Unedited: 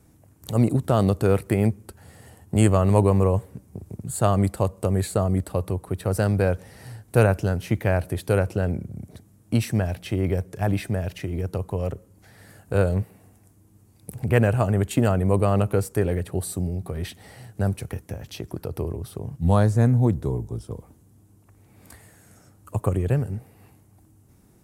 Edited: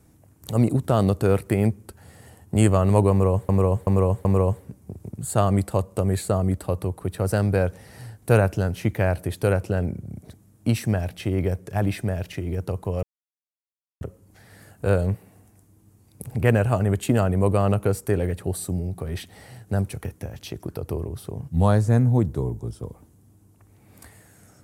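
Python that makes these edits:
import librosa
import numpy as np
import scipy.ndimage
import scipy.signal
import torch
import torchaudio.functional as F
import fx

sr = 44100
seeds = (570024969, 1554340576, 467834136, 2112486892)

y = fx.edit(x, sr, fx.repeat(start_s=3.11, length_s=0.38, count=4),
    fx.insert_silence(at_s=11.89, length_s=0.98), tone=tone)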